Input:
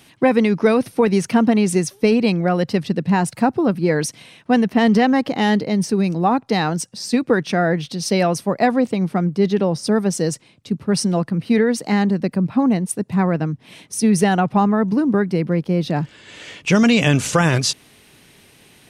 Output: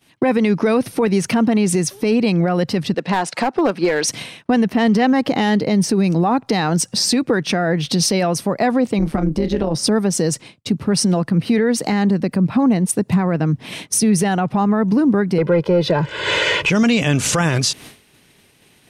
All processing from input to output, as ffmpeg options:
ffmpeg -i in.wav -filter_complex "[0:a]asettb=1/sr,asplit=3[link_01][link_02][link_03];[link_01]atrim=end=2.944[link_04];[link_02]atrim=start=2.94:end=4.08,asetpts=PTS-STARTPTS,afade=type=in:duration=0.004:curve=qsin,afade=type=out:start_time=1.136:duration=0.004:curve=qsin,highpass=450,lowpass=6000,aeval=exprs='clip(val(0),-1,0.112)':channel_layout=same[link_05];[link_03]atrim=start=4.076[link_06];[link_04][link_05]acrossfade=duration=0.004:curve1=hsin:curve2=qsin[link_07];[link_07][link_06]acrossfade=duration=0.004:curve1=qsin:curve2=hsin,asettb=1/sr,asplit=3[link_08][link_09][link_10];[link_08]atrim=end=8.994[link_11];[link_09]atrim=start=8.99:end=9.75,asetpts=PTS-STARTPTS,afade=type=in:duration=0.004:curve=qsin,afade=type=out:start_time=0.756:duration=0.004:curve=qsin,tremolo=f=150:d=0.788,asplit=2[link_12][link_13];[link_13]adelay=31,volume=-13dB[link_14];[link_12][link_14]amix=inputs=2:normalize=0,atrim=end_sample=33516[link_15];[link_10]atrim=start=9.746[link_16];[link_11][link_15]acrossfade=duration=0.004:curve1=hsin:curve2=qsin[link_17];[link_17][link_16]acrossfade=duration=0.004:curve1=qsin:curve2=hsin,asettb=1/sr,asplit=3[link_18][link_19][link_20];[link_18]atrim=end=15.384[link_21];[link_19]atrim=start=15.38:end=16.7,asetpts=PTS-STARTPTS,afade=type=in:duration=0.004:curve=qsin,afade=type=out:start_time=1.316:duration=0.004:curve=qsin,asplit=2[link_22][link_23];[link_23]highpass=frequency=720:poles=1,volume=13dB,asoftclip=type=tanh:threshold=-8dB[link_24];[link_22][link_24]amix=inputs=2:normalize=0,lowpass=frequency=1300:poles=1,volume=-6dB,aecho=1:1:2:0.86,atrim=end_sample=58212,acontrast=51[link_25];[link_20]atrim=start=16.696[link_26];[link_21][link_25]acrossfade=duration=0.004:curve1=hsin:curve2=qsin[link_27];[link_27][link_26]acrossfade=duration=0.004:curve1=qsin:curve2=hsin,agate=range=-33dB:threshold=-37dB:ratio=3:detection=peak,acompressor=threshold=-28dB:ratio=5,alimiter=level_in=22dB:limit=-1dB:release=50:level=0:latency=1,volume=-7dB" out.wav

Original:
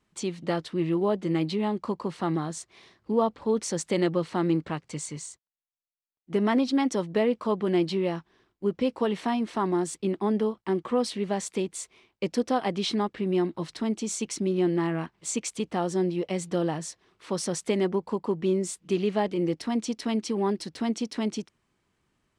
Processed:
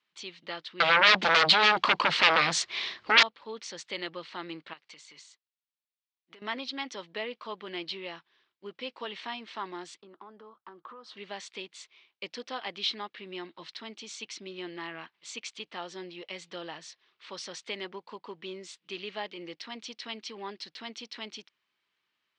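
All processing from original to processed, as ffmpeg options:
ffmpeg -i in.wav -filter_complex "[0:a]asettb=1/sr,asplit=3[link_01][link_02][link_03];[link_01]atrim=end=0.804[link_04];[link_02]atrim=start=0.8:end=3.23,asetpts=PTS-STARTPTS,afade=type=in:duration=0.004:curve=qsin,afade=type=out:start_time=2.426:duration=0.004:curve=qsin,lowshelf=frequency=310:gain=5.5,aeval=exprs='0.282*sin(PI/2*7.08*val(0)/0.282)':channel_layout=same[link_05];[link_03]atrim=start=3.226[link_06];[link_04][link_05]acrossfade=duration=0.004:curve1=hsin:curve2=qsin[link_07];[link_07][link_06]acrossfade=duration=0.004:curve1=qsin:curve2=hsin,asettb=1/sr,asplit=3[link_08][link_09][link_10];[link_08]atrim=end=4.734[link_11];[link_09]atrim=start=4.73:end=6.42,asetpts=PTS-STARTPTS,afade=type=in:duration=0.004:curve=qsin,afade=type=out:start_time=1.686:duration=0.004:curve=qsin,highpass=frequency=300:poles=1,acompressor=threshold=-38dB:ratio=6:attack=3.2:release=140:knee=1:detection=peak[link_12];[link_10]atrim=start=6.416[link_13];[link_11][link_12]acrossfade=duration=0.004:curve1=hsin:curve2=qsin[link_14];[link_14][link_13]acrossfade=duration=0.004:curve1=qsin:curve2=hsin,asettb=1/sr,asplit=3[link_15][link_16][link_17];[link_15]atrim=end=10.014[link_18];[link_16]atrim=start=10.01:end=11.17,asetpts=PTS-STARTPTS,afade=type=in:duration=0.004:curve=qsin,afade=type=out:start_time=1.156:duration=0.004:curve=qsin,highshelf=frequency=1700:width_type=q:width=3:gain=-9,acompressor=threshold=-33dB:ratio=5:attack=3.2:release=140:knee=1:detection=peak[link_19];[link_17]atrim=start=11.166[link_20];[link_18][link_19]acrossfade=duration=0.004:curve1=hsin:curve2=qsin[link_21];[link_21][link_20]acrossfade=duration=0.004:curve1=qsin:curve2=hsin,lowpass=frequency=3900:width=0.5412,lowpass=frequency=3900:width=1.3066,aderivative,bandreject=frequency=740:width=18,volume=9.5dB" out.wav

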